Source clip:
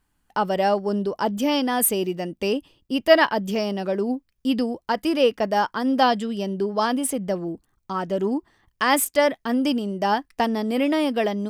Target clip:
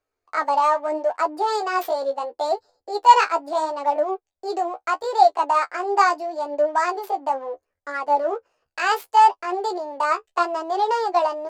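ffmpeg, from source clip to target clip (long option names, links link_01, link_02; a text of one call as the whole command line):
ffmpeg -i in.wav -filter_complex "[0:a]equalizer=frequency=125:width_type=o:width=1:gain=-7,equalizer=frequency=500:width_type=o:width=1:gain=7,equalizer=frequency=2000:width_type=o:width=1:gain=-7,asplit=2[link_01][link_02];[link_02]adynamicsmooth=sensitivity=6.5:basefreq=620,volume=0dB[link_03];[link_01][link_03]amix=inputs=2:normalize=0,acrossover=split=260 5700:gain=0.126 1 0.141[link_04][link_05][link_06];[link_04][link_05][link_06]amix=inputs=3:normalize=0,asetrate=66075,aresample=44100,atempo=0.66742,flanger=delay=10:depth=4.9:regen=27:speed=0.75:shape=sinusoidal,volume=-3dB" out.wav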